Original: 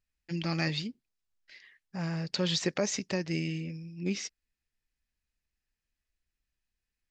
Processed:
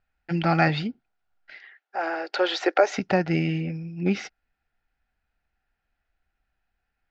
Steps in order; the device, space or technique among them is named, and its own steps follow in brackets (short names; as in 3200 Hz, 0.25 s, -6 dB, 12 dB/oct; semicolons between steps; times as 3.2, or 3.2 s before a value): 1.56–2.98 Chebyshev high-pass 310 Hz, order 5; inside a cardboard box (LPF 2800 Hz 12 dB/oct; small resonant body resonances 760/1400 Hz, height 15 dB, ringing for 25 ms); gain +8 dB